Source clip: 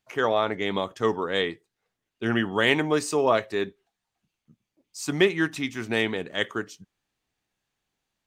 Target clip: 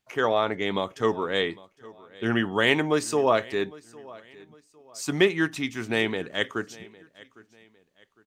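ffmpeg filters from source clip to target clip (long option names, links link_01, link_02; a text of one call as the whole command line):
ffmpeg -i in.wav -af "aecho=1:1:806|1612:0.0794|0.0278" out.wav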